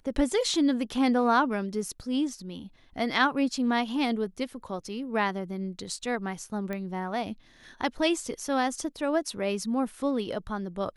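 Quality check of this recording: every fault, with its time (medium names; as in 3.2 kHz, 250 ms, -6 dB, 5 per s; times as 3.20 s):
6.73 s: pop -21 dBFS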